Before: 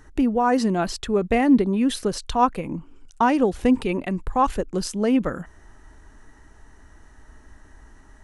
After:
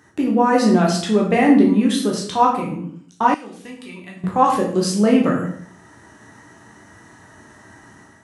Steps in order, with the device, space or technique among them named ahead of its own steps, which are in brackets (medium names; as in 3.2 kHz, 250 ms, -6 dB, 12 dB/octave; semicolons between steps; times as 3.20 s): far laptop microphone (reverberation RT60 0.55 s, pre-delay 10 ms, DRR -2 dB; high-pass 110 Hz 24 dB/octave; level rider gain up to 6.5 dB); 3.34–4.24 s: amplifier tone stack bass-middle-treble 5-5-5; trim -1 dB